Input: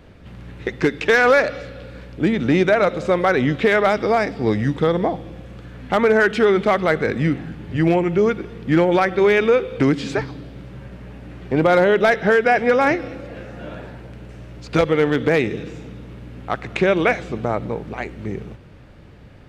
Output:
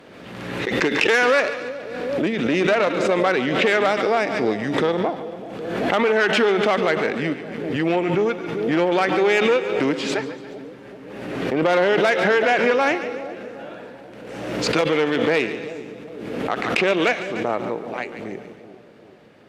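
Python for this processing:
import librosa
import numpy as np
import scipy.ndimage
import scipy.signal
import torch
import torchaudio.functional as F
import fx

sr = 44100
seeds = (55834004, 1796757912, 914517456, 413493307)

p1 = fx.dynamic_eq(x, sr, hz=2800.0, q=3.3, threshold_db=-41.0, ratio=4.0, max_db=7)
p2 = fx.tube_stage(p1, sr, drive_db=11.0, bias=0.5)
p3 = scipy.signal.sosfilt(scipy.signal.butter(2, 260.0, 'highpass', fs=sr, output='sos'), p2)
p4 = p3 + fx.echo_split(p3, sr, split_hz=700.0, low_ms=386, high_ms=142, feedback_pct=52, wet_db=-12.5, dry=0)
y = fx.pre_swell(p4, sr, db_per_s=36.0)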